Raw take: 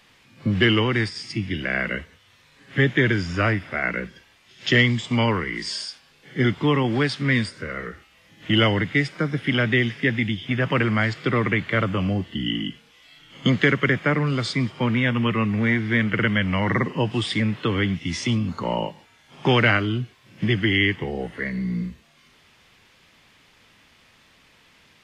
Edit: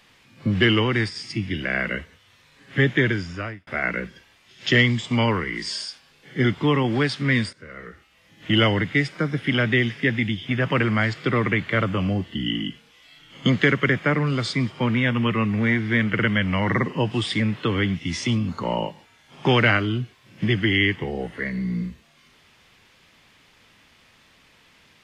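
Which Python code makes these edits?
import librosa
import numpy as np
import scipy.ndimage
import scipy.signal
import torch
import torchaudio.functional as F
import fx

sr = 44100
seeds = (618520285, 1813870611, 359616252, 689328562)

y = fx.edit(x, sr, fx.fade_out_span(start_s=2.97, length_s=0.7),
    fx.fade_in_from(start_s=7.53, length_s=0.98, floor_db=-13.5), tone=tone)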